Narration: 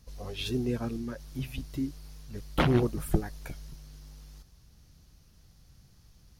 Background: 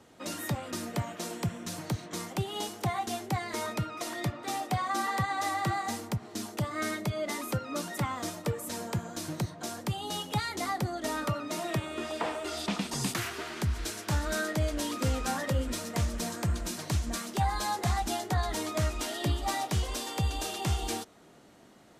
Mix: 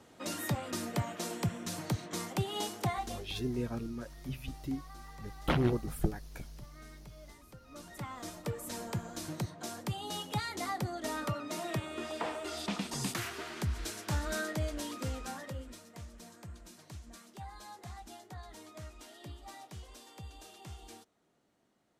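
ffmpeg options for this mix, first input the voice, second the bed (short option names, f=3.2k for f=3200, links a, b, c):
-filter_complex "[0:a]adelay=2900,volume=-4.5dB[a];[1:a]volume=17.5dB,afade=t=out:st=2.81:d=0.52:silence=0.0841395,afade=t=in:st=7.57:d=1.15:silence=0.11885,afade=t=out:st=14.35:d=1.5:silence=0.199526[b];[a][b]amix=inputs=2:normalize=0"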